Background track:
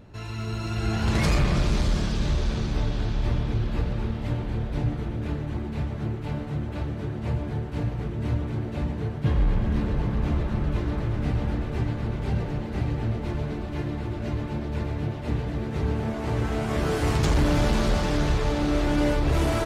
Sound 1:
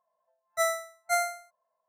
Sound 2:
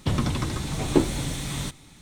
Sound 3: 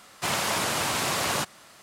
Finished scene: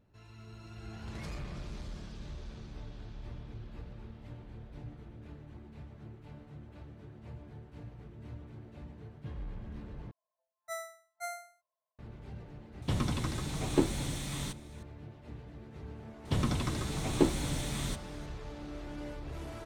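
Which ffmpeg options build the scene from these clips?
-filter_complex "[2:a]asplit=2[s0][s1];[0:a]volume=0.106,asplit=2[s2][s3];[s2]atrim=end=10.114[s4];[1:a]atrim=end=1.88,asetpts=PTS-STARTPTS,volume=0.211[s5];[s3]atrim=start=11.986[s6];[s0]atrim=end=2.01,asetpts=PTS-STARTPTS,volume=0.447,afade=t=in:d=0.004:c=hsin,afade=t=out:st=2.006:d=0.004:c=hsin,adelay=12820[s7];[s1]atrim=end=2.01,asetpts=PTS-STARTPTS,volume=0.501,afade=t=in:d=0.004:c=hsin,afade=t=out:st=2.006:d=0.004:c=hsin,adelay=16250[s8];[s4][s5]acrossfade=d=0.004:c1=hsin:c2=hsin[s9];[s9][s6]acrossfade=d=0.004:c1=hsin:c2=hsin[s10];[s10][s7][s8]amix=inputs=3:normalize=0"

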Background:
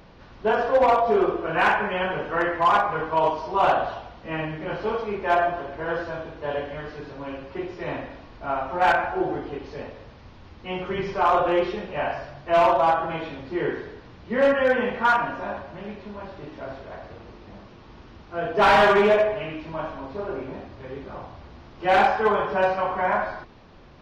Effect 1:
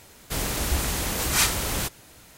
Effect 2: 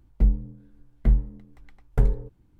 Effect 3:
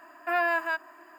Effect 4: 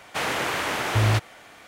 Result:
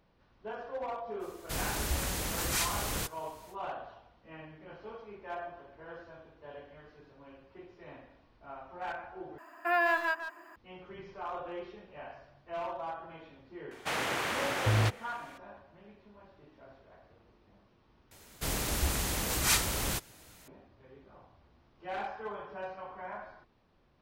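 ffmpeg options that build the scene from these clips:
-filter_complex "[1:a]asplit=2[s0][s1];[0:a]volume=0.106[s2];[s0]alimiter=limit=0.251:level=0:latency=1:release=165[s3];[3:a]asplit=2[s4][s5];[s5]adelay=150,highpass=300,lowpass=3400,asoftclip=type=hard:threshold=0.0562,volume=0.398[s6];[s4][s6]amix=inputs=2:normalize=0[s7];[s2]asplit=3[s8][s9][s10];[s8]atrim=end=9.384[s11];[s7]atrim=end=1.18,asetpts=PTS-STARTPTS,volume=0.794[s12];[s9]atrim=start=10.556:end=18.114[s13];[s1]atrim=end=2.37,asetpts=PTS-STARTPTS,volume=0.531[s14];[s10]atrim=start=20.476[s15];[s3]atrim=end=2.37,asetpts=PTS-STARTPTS,volume=0.422,afade=t=in:d=0.05,afade=t=out:st=2.32:d=0.05,adelay=1190[s16];[4:a]atrim=end=1.67,asetpts=PTS-STARTPTS,volume=0.473,afade=t=in:d=0.004:c=hsin,afade=t=out:st=1.666:d=0.004:c=hsin,adelay=13710[s17];[s11][s12]acrossfade=d=0.004:c1=hsin:c2=hsin[s18];[s18][s13]acrossfade=d=0.004:c1=hsin:c2=hsin[s19];[s19][s14]acrossfade=d=0.004:c1=hsin:c2=hsin[s20];[s20][s15]acrossfade=d=0.004:c1=hsin:c2=hsin[s21];[s21][s16][s17]amix=inputs=3:normalize=0"

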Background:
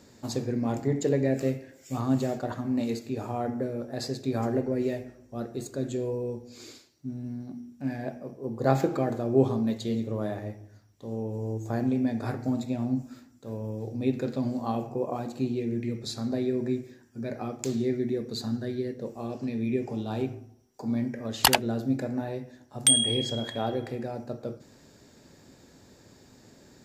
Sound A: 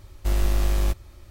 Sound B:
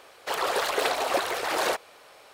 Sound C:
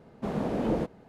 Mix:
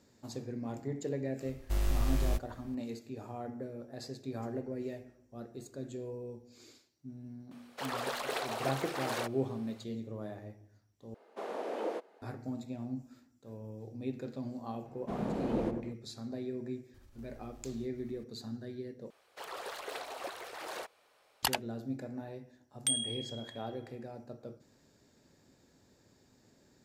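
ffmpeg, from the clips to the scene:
-filter_complex "[1:a]asplit=2[s0][s1];[2:a]asplit=2[s2][s3];[3:a]asplit=2[s4][s5];[0:a]volume=0.282[s6];[s4]highpass=f=390:w=0.5412,highpass=f=390:w=1.3066[s7];[s5]asplit=2[s8][s9];[s9]adelay=97,lowpass=f=1000:p=1,volume=0.562,asplit=2[s10][s11];[s11]adelay=97,lowpass=f=1000:p=1,volume=0.46,asplit=2[s12][s13];[s13]adelay=97,lowpass=f=1000:p=1,volume=0.46,asplit=2[s14][s15];[s15]adelay=97,lowpass=f=1000:p=1,volume=0.46,asplit=2[s16][s17];[s17]adelay=97,lowpass=f=1000:p=1,volume=0.46,asplit=2[s18][s19];[s19]adelay=97,lowpass=f=1000:p=1,volume=0.46[s20];[s8][s10][s12][s14][s16][s18][s20]amix=inputs=7:normalize=0[s21];[s1]acompressor=threshold=0.00708:ratio=6:attack=3.2:release=140:knee=1:detection=peak[s22];[s6]asplit=3[s23][s24][s25];[s23]atrim=end=11.144[s26];[s7]atrim=end=1.08,asetpts=PTS-STARTPTS,volume=0.631[s27];[s24]atrim=start=12.216:end=19.104[s28];[s3]atrim=end=2.33,asetpts=PTS-STARTPTS,volume=0.158[s29];[s25]atrim=start=21.426[s30];[s0]atrim=end=1.3,asetpts=PTS-STARTPTS,volume=0.376,afade=t=in:d=0.004:c=hsin,afade=t=out:st=1.296:d=0.004:c=hsin,adelay=1450[s31];[s2]atrim=end=2.33,asetpts=PTS-STARTPTS,volume=0.299,afade=t=in:d=0.004:c=hsin,afade=t=out:st=2.326:d=0.004:c=hsin,adelay=7510[s32];[s21]atrim=end=1.08,asetpts=PTS-STARTPTS,volume=0.473,afade=t=in:d=0.004:c=hsin,afade=t=out:st=1.076:d=0.004:c=hsin,adelay=14850[s33];[s22]atrim=end=1.3,asetpts=PTS-STARTPTS,volume=0.266,afade=t=in:d=0.004:c=hsin,afade=t=out:st=1.296:d=0.004:c=hsin,adelay=16940[s34];[s26][s27]acrossfade=d=0.004:c1=hsin:c2=hsin[s35];[s35][s28]acrossfade=d=0.004:c1=hsin:c2=hsin[s36];[s36][s29]acrossfade=d=0.004:c1=hsin:c2=hsin[s37];[s37][s30]acrossfade=d=0.004:c1=hsin:c2=hsin[s38];[s38][s31][s32][s33][s34]amix=inputs=5:normalize=0"

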